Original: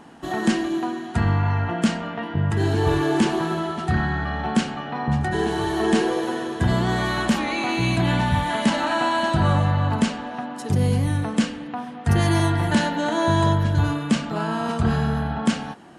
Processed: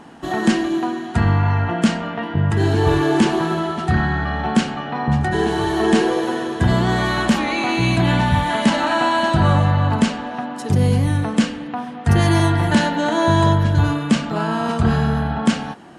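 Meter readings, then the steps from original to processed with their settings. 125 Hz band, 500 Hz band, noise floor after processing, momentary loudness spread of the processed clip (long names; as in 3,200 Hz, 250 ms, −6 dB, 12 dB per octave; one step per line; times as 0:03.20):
+4.0 dB, +4.0 dB, −30 dBFS, 6 LU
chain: high-shelf EQ 10,000 Hz −4.5 dB
level +4 dB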